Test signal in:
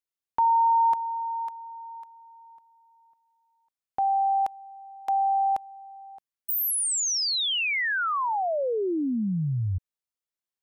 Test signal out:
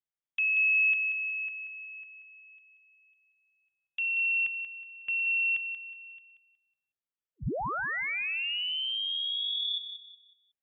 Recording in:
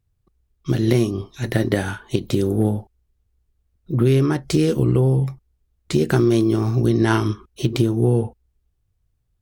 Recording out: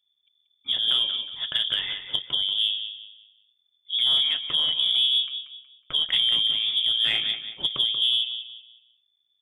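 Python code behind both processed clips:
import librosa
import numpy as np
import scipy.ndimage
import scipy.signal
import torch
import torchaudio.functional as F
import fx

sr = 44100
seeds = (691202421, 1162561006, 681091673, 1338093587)

p1 = fx.freq_invert(x, sr, carrier_hz=3500)
p2 = fx.echo_feedback(p1, sr, ms=184, feedback_pct=32, wet_db=-9.5)
p3 = np.clip(p2, -10.0 ** (-12.0 / 20.0), 10.0 ** (-12.0 / 20.0))
p4 = p2 + (p3 * librosa.db_to_amplitude(-11.5))
p5 = fx.peak_eq(p4, sr, hz=140.0, db=8.0, octaves=0.6)
y = p5 * librosa.db_to_amplitude(-8.5)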